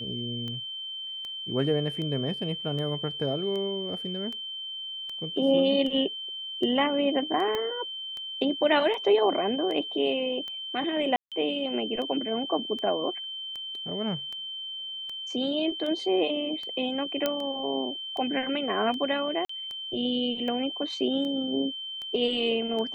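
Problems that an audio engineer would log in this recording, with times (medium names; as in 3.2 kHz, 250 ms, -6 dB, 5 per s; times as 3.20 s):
tick 78 rpm -25 dBFS
whine 3.1 kHz -34 dBFS
7.55 s: pop -17 dBFS
11.16–11.32 s: dropout 157 ms
17.26 s: pop -11 dBFS
19.45–19.49 s: dropout 44 ms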